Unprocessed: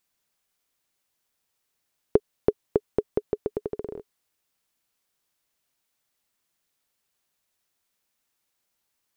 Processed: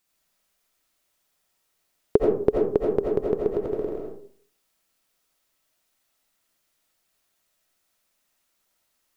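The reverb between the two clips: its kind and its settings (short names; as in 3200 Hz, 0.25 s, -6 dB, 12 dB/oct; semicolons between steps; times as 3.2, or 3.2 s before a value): digital reverb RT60 0.53 s, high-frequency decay 0.45×, pre-delay 45 ms, DRR -2 dB; gain +1.5 dB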